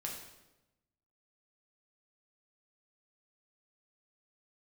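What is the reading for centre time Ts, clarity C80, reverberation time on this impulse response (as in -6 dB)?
41 ms, 6.5 dB, 1.0 s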